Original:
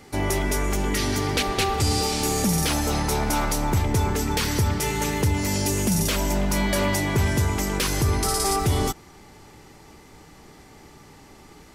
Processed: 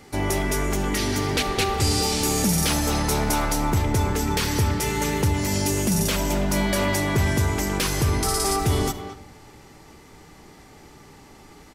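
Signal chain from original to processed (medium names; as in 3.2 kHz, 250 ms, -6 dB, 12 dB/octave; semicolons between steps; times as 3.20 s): 1.82–3.36 s: treble shelf 3.4 kHz +2.5 dB; speakerphone echo 220 ms, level -10 dB; on a send at -14 dB: reverberation RT60 1.1 s, pre-delay 25 ms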